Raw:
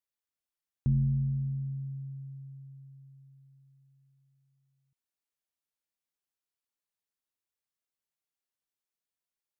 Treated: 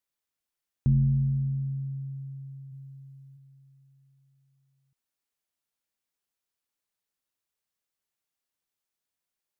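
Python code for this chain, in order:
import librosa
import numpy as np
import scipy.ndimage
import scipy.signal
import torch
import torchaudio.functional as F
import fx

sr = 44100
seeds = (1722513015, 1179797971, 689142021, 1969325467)

y = fx.comb(x, sr, ms=2.0, depth=0.87, at=(2.71, 3.36), fade=0.02)
y = y * 10.0 ** (4.0 / 20.0)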